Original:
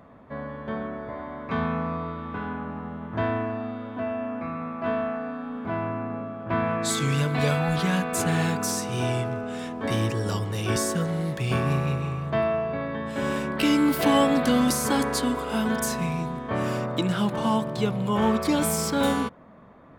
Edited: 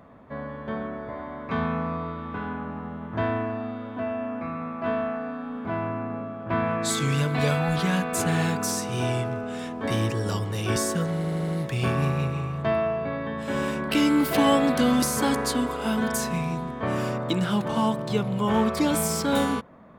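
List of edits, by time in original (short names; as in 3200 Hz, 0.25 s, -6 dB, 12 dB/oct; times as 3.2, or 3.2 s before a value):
11.16 stutter 0.08 s, 5 plays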